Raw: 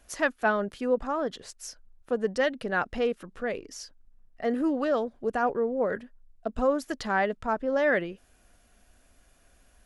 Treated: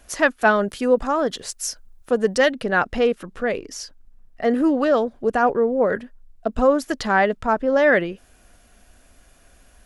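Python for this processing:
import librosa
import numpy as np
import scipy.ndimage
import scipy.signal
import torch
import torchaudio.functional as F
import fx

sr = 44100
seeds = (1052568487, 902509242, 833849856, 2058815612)

y = fx.high_shelf(x, sr, hz=5300.0, db=9.0, at=(0.41, 2.52))
y = F.gain(torch.from_numpy(y), 8.0).numpy()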